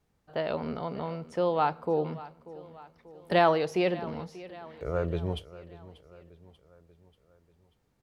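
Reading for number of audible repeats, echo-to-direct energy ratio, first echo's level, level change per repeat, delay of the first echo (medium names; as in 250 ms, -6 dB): 4, -16.5 dB, -18.0 dB, -5.5 dB, 588 ms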